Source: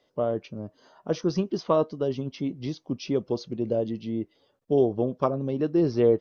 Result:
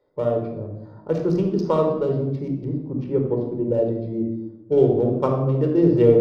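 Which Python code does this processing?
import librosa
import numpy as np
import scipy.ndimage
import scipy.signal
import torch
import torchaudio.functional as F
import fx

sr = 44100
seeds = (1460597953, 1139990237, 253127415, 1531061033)

y = fx.wiener(x, sr, points=15)
y = fx.lowpass(y, sr, hz=fx.line((2.63, 1400.0), (3.72, 2400.0)), slope=12, at=(2.63, 3.72), fade=0.02)
y = fx.room_shoebox(y, sr, seeds[0], volume_m3=3600.0, walls='furnished', distance_m=4.5)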